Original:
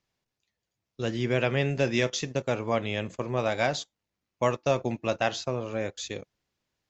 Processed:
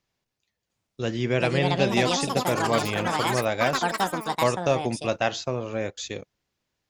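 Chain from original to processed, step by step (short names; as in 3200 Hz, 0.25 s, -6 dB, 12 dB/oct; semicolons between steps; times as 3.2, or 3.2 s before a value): echoes that change speed 0.699 s, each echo +6 st, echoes 3; gain +2 dB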